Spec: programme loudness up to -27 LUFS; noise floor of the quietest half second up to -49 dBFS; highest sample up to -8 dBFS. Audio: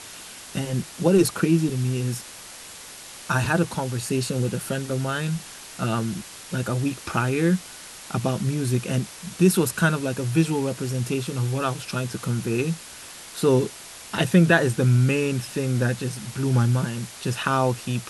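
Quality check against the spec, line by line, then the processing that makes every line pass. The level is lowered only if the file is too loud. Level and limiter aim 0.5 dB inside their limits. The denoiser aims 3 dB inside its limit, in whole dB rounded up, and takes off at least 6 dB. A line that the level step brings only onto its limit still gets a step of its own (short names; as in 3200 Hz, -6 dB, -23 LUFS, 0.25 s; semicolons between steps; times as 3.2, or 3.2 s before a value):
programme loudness -24.0 LUFS: fail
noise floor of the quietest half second -41 dBFS: fail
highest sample -5.0 dBFS: fail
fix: denoiser 8 dB, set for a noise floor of -41 dBFS; gain -3.5 dB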